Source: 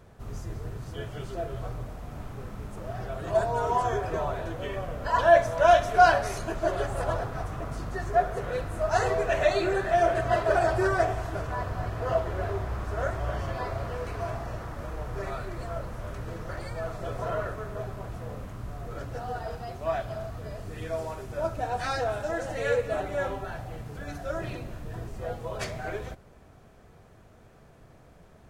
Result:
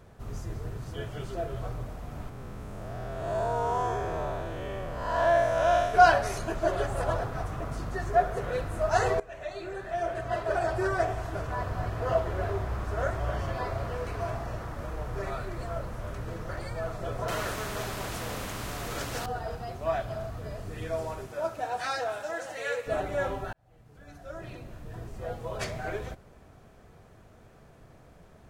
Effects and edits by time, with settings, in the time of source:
0:02.29–0:05.94: spectrum smeared in time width 215 ms
0:09.20–0:11.78: fade in, from −20.5 dB
0:17.28–0:19.26: every bin compressed towards the loudest bin 2 to 1
0:21.26–0:22.86: high-pass filter 340 Hz → 1,200 Hz 6 dB per octave
0:23.53–0:25.69: fade in

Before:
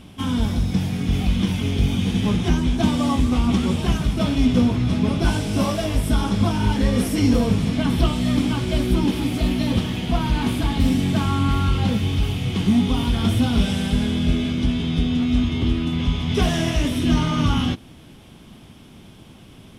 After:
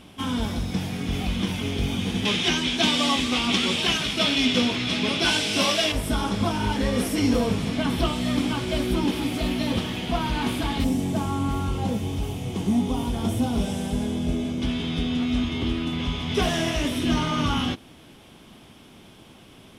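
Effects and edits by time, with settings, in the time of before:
0:02.25–0:05.92: meter weighting curve D
0:10.84–0:14.62: flat-topped bell 2,400 Hz −9 dB 2.3 octaves
whole clip: bass and treble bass −8 dB, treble −1 dB

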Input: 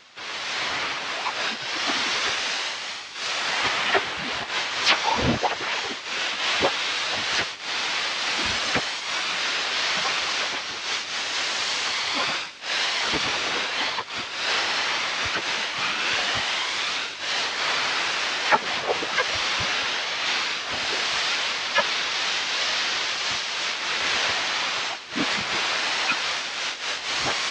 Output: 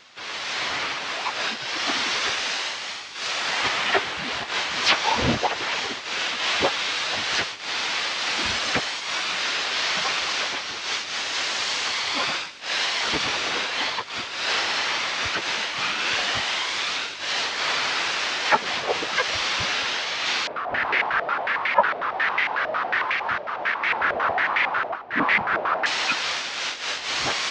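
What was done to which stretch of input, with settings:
0:03.99–0:04.82: delay throw 520 ms, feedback 70%, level −5.5 dB
0:20.47–0:25.86: low-pass on a step sequencer 11 Hz 630–2,100 Hz

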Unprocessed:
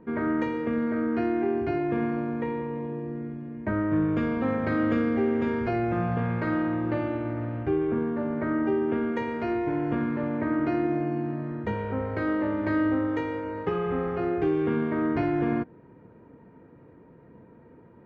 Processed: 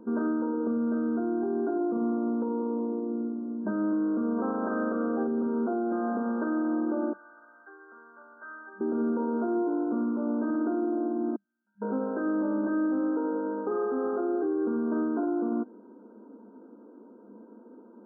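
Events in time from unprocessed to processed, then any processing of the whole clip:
0:04.37–0:05.26: ceiling on every frequency bin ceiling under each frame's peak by 13 dB
0:07.13–0:08.81: high-pass with resonance 2,300 Hz, resonance Q 8.2
0:11.36–0:11.82: inverse Chebyshev high-pass filter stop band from 1,200 Hz, stop band 50 dB
whole clip: brick-wall band-pass 200–1,600 Hz; low-shelf EQ 270 Hz +11.5 dB; brickwall limiter −20 dBFS; level −1.5 dB

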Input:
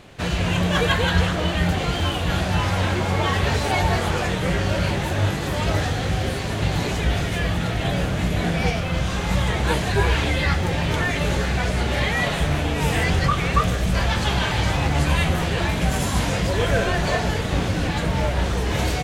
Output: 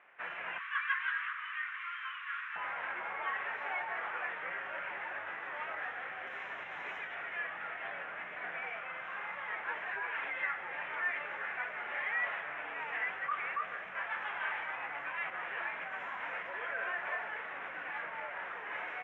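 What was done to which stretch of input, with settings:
0:00.58–0:02.56: elliptic high-pass filter 1,100 Hz
0:06.27–0:07.15: bass and treble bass +3 dB, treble +12 dB
whole clip: inverse Chebyshev low-pass filter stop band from 4,100 Hz, stop band 40 dB; brickwall limiter −14 dBFS; high-pass filter 1,400 Hz 12 dB per octave; level −4.5 dB

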